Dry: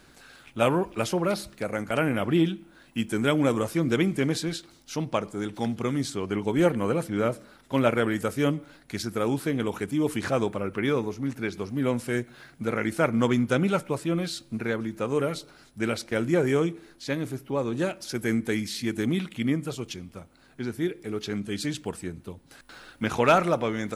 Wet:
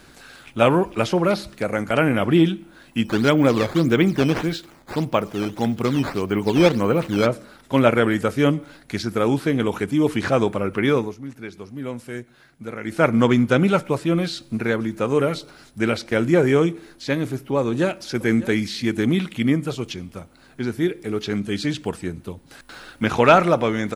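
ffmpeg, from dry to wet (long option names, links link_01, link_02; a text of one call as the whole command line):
ffmpeg -i in.wav -filter_complex "[0:a]asplit=3[link_01][link_02][link_03];[link_01]afade=type=out:start_time=3.04:duration=0.02[link_04];[link_02]acrusher=samples=9:mix=1:aa=0.000001:lfo=1:lforange=14.4:lforate=1.7,afade=type=in:start_time=3.04:duration=0.02,afade=type=out:start_time=7.25:duration=0.02[link_05];[link_03]afade=type=in:start_time=7.25:duration=0.02[link_06];[link_04][link_05][link_06]amix=inputs=3:normalize=0,asplit=2[link_07][link_08];[link_08]afade=type=in:start_time=17.6:duration=0.01,afade=type=out:start_time=18.12:duration=0.01,aecho=0:1:600|1200:0.141254|0.0141254[link_09];[link_07][link_09]amix=inputs=2:normalize=0,asplit=3[link_10][link_11][link_12];[link_10]atrim=end=11.17,asetpts=PTS-STARTPTS,afade=type=out:start_time=10.96:duration=0.21:silence=0.281838[link_13];[link_11]atrim=start=11.17:end=12.83,asetpts=PTS-STARTPTS,volume=-11dB[link_14];[link_12]atrim=start=12.83,asetpts=PTS-STARTPTS,afade=type=in:duration=0.21:silence=0.281838[link_15];[link_13][link_14][link_15]concat=n=3:v=0:a=1,acrossover=split=5400[link_16][link_17];[link_17]acompressor=threshold=-51dB:ratio=4:attack=1:release=60[link_18];[link_16][link_18]amix=inputs=2:normalize=0,volume=6.5dB" out.wav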